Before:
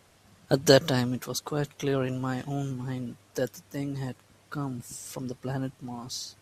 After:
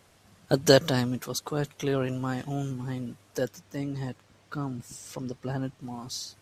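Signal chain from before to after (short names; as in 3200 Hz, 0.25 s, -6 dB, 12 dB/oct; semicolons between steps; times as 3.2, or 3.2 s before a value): 3.44–5.82 bell 11000 Hz -9 dB 0.68 oct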